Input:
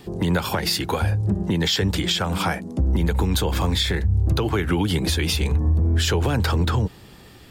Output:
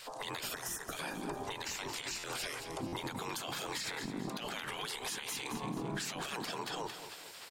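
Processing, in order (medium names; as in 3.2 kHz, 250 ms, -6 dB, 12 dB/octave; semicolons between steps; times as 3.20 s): octave divider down 2 oct, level -4 dB; graphic EQ 125/250/500/1000/4000/8000 Hz -6/+6/-8/+10/+5/+4 dB; spectral gate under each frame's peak -15 dB weak; compression, threshold -34 dBFS, peak gain reduction 12.5 dB; time-frequency box 0.54–0.91 s, 2–5 kHz -28 dB; feedback delay 221 ms, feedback 44%, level -12 dB; peak limiter -29 dBFS, peak gain reduction 10 dB; buffer glitch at 2.18/2.87 s, samples 512, times 4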